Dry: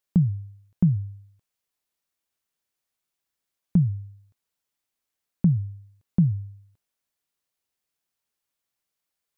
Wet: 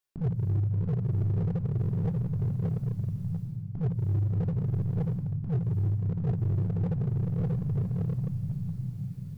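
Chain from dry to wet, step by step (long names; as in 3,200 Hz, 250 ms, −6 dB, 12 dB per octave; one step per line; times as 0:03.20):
notch filter 650 Hz, Q 12
feedback delay with all-pass diffusion 677 ms, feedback 44%, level −6 dB
reversed playback
downward compressor 10 to 1, threshold −37 dBFS, peak gain reduction 22.5 dB
reversed playback
rectangular room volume 1,100 cubic metres, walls mixed, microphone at 3.2 metres
dynamic equaliser 320 Hz, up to −7 dB, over −47 dBFS, Q 1
in parallel at −3 dB: wave folding −31 dBFS
on the sum: parametric band 200 Hz −6.5 dB 0.77 octaves
level +4 dB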